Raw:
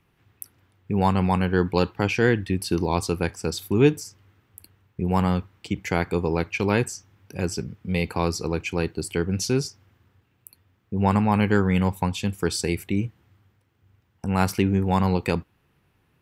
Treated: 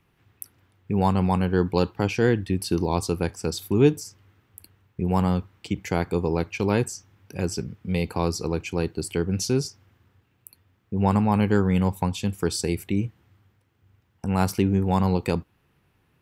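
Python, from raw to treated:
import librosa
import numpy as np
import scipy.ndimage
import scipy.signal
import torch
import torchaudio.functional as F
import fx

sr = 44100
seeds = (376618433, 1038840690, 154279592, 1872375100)

y = fx.dynamic_eq(x, sr, hz=2000.0, q=0.97, threshold_db=-39.0, ratio=4.0, max_db=-6)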